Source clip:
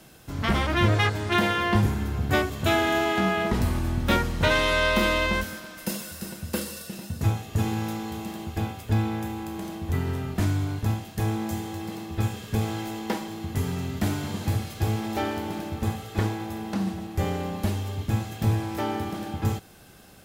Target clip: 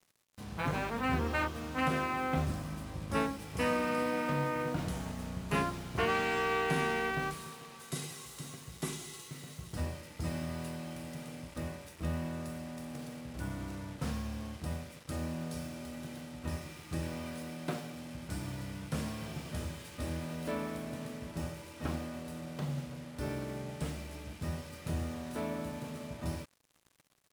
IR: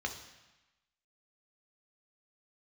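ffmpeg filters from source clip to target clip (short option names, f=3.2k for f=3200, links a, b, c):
-af "highpass=140,asetrate=32667,aresample=44100,acrusher=bits=6:mix=0:aa=0.5,volume=-8.5dB"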